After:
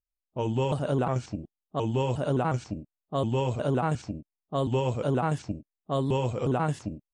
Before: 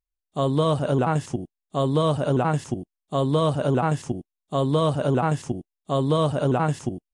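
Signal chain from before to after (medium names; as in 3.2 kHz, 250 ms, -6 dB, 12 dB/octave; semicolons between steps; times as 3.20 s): pitch shift switched off and on -3 st, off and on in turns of 359 ms; level-controlled noise filter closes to 680 Hz, open at -20 dBFS; trim -4.5 dB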